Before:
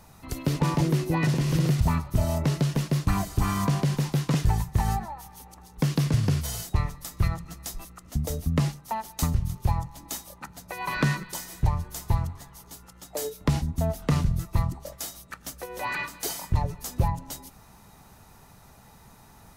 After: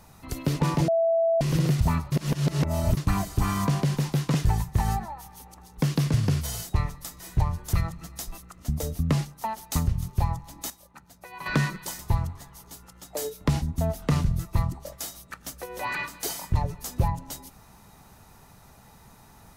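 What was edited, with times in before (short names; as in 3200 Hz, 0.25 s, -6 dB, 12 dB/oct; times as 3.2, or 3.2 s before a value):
0.88–1.41 bleep 662 Hz -19 dBFS
2.12–2.97 reverse
10.17–10.93 gain -8.5 dB
11.46–11.99 move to 7.2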